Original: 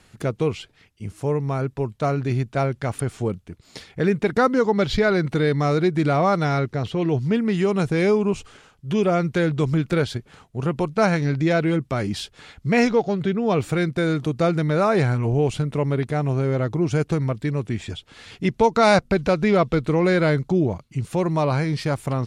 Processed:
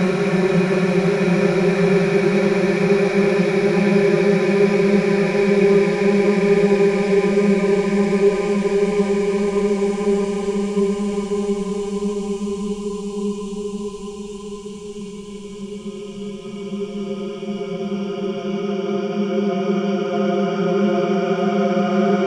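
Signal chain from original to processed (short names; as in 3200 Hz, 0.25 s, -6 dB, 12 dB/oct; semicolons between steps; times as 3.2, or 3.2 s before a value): wow and flutter 120 cents; spectral noise reduction 18 dB; Paulstretch 19×, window 1.00 s, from 7.82; gain +4 dB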